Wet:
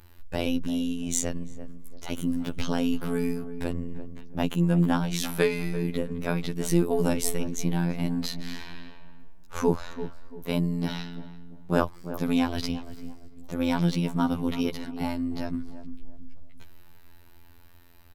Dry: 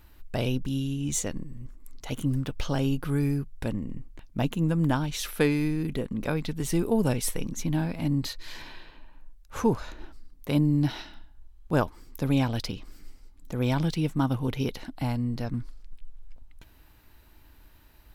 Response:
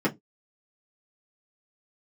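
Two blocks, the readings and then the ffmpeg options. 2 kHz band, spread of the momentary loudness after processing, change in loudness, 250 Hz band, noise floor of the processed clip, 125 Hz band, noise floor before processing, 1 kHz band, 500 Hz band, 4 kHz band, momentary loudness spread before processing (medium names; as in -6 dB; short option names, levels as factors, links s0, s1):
+1.0 dB, 17 LU, 0.0 dB, +1.0 dB, -48 dBFS, -2.5 dB, -55 dBFS, +1.0 dB, +2.0 dB, +1.0 dB, 16 LU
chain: -filter_complex "[0:a]afftfilt=real='hypot(re,im)*cos(PI*b)':imag='0':win_size=2048:overlap=0.75,asplit=2[s0][s1];[s1]adelay=341,lowpass=f=900:p=1,volume=0.282,asplit=2[s2][s3];[s3]adelay=341,lowpass=f=900:p=1,volume=0.39,asplit=2[s4][s5];[s5]adelay=341,lowpass=f=900:p=1,volume=0.39,asplit=2[s6][s7];[s7]adelay=341,lowpass=f=900:p=1,volume=0.39[s8];[s0][s2][s4][s6][s8]amix=inputs=5:normalize=0,volume=1.68"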